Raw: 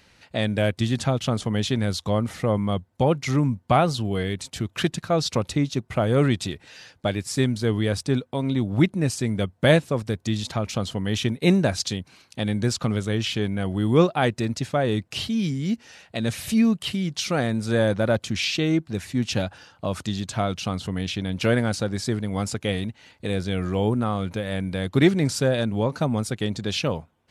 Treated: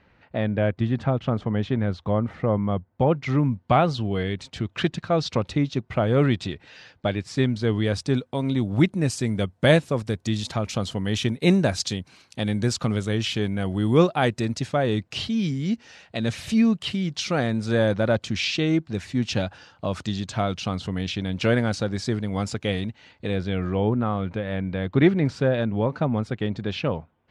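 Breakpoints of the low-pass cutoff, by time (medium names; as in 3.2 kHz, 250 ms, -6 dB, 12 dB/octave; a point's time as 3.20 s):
2.89 s 1.8 kHz
3.58 s 4.1 kHz
7.46 s 4.1 kHz
8.35 s 10 kHz
14.41 s 10 kHz
15.10 s 6.2 kHz
22.79 s 6.2 kHz
23.82 s 2.6 kHz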